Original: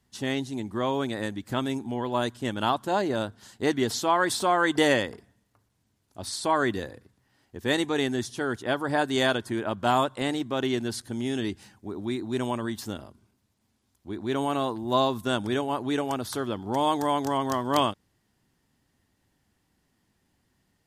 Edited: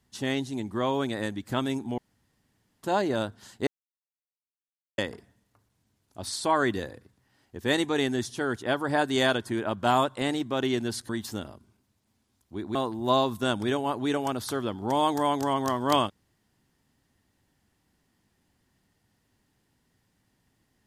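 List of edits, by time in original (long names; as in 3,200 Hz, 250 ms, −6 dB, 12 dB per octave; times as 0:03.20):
0:01.98–0:02.83: fill with room tone
0:03.67–0:04.98: silence
0:11.09–0:12.63: remove
0:14.29–0:14.59: remove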